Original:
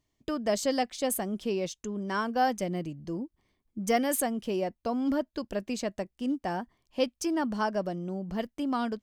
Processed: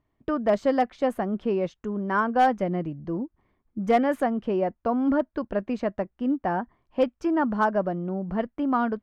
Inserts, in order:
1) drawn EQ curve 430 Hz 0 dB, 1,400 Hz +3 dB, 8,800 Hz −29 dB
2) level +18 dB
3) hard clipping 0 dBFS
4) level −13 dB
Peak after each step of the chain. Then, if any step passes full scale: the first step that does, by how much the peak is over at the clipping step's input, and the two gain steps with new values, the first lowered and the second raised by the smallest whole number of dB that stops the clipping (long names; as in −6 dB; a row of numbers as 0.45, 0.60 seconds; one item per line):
−14.0, +4.0, 0.0, −13.0 dBFS
step 2, 4.0 dB
step 2 +14 dB, step 4 −9 dB